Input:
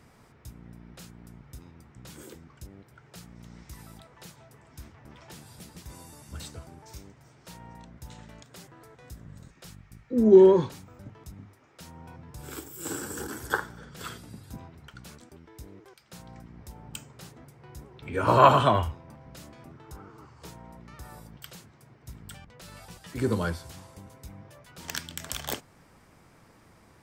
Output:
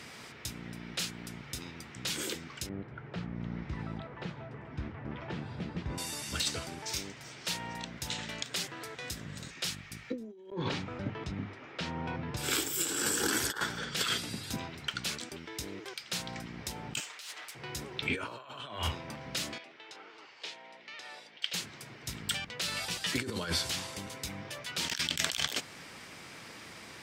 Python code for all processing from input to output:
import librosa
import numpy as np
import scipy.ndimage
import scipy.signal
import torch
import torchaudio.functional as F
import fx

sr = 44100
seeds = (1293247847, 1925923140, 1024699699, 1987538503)

y = fx.chain(x, sr, fx.lowpass(hz=1400.0, slope=12),
    fx.low_shelf(hz=290.0, db=9.0), at=(2.69, 5.98))
y = fx.chain(y, sr, fx.spacing_loss(db_at_10k=30),
    fx.over_compress(threshold_db=-31.0, ratio=-0.5), at=(10.5, 12.37))
y = fx.chain(y, sr, fx.lower_of_two(delay_ms=6.6),
    fx.highpass(hz=920.0, slope=12),
    fx.over_compress(threshold_db=-57.0, ratio=-1.0), at=(17.0, 17.55))
y = fx.chain(y, sr, fx.bandpass_edges(low_hz=720.0, high_hz=3200.0),
    fx.peak_eq(hz=1200.0, db=-12.0, octaves=1.1), at=(19.58, 21.54))
y = fx.weighting(y, sr, curve='D')
y = fx.over_compress(y, sr, threshold_db=-36.0, ratio=-1.0)